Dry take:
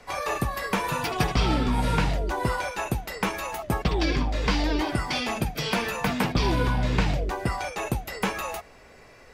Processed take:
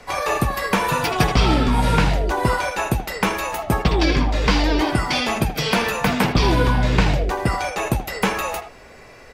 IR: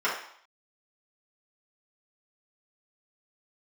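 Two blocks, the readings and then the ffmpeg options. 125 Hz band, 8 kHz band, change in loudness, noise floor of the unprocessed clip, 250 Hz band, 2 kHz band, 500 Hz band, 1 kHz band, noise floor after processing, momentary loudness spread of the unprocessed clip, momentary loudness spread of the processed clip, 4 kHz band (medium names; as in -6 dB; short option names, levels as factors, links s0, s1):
+6.5 dB, +6.5 dB, +6.5 dB, -51 dBFS, +6.5 dB, +7.0 dB, +7.0 dB, +7.0 dB, -44 dBFS, 6 LU, 6 LU, +6.5 dB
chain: -filter_complex "[0:a]asplit=2[s0][s1];[s1]adelay=80,highpass=300,lowpass=3400,asoftclip=type=hard:threshold=0.112,volume=0.355[s2];[s0][s2]amix=inputs=2:normalize=0,volume=2.11"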